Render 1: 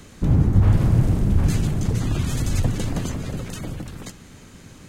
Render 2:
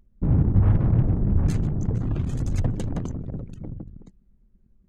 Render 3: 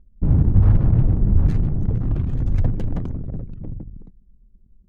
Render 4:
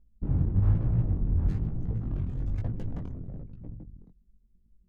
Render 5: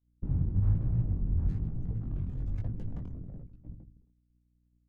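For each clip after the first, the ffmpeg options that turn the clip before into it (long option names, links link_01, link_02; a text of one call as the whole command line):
ffmpeg -i in.wav -af "anlmdn=158,volume=-2.5dB" out.wav
ffmpeg -i in.wav -af "lowshelf=frequency=75:gain=9,adynamicsmooth=sensitivity=7.5:basefreq=900" out.wav
ffmpeg -i in.wav -af "flanger=delay=17:depth=6:speed=1.1,volume=-7dB" out.wav
ffmpeg -i in.wav -filter_complex "[0:a]acrossover=split=260[link_01][link_02];[link_02]acompressor=threshold=-51dB:ratio=2[link_03];[link_01][link_03]amix=inputs=2:normalize=0,aeval=exprs='val(0)+0.00447*(sin(2*PI*60*n/s)+sin(2*PI*2*60*n/s)/2+sin(2*PI*3*60*n/s)/3+sin(2*PI*4*60*n/s)/4+sin(2*PI*5*60*n/s)/5)':channel_layout=same,agate=range=-33dB:threshold=-35dB:ratio=3:detection=peak,volume=-3dB" out.wav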